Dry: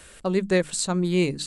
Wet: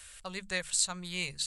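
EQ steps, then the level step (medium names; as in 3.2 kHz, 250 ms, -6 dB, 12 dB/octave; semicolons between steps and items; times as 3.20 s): amplifier tone stack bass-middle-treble 10-0-10; 0.0 dB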